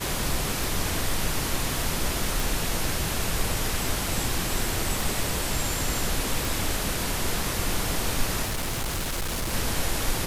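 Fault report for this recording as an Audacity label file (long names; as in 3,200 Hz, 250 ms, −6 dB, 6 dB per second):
0.640000	0.640000	click
2.400000	2.400000	click
5.010000	5.010000	click
6.450000	6.450000	click
8.420000	9.540000	clipping −25 dBFS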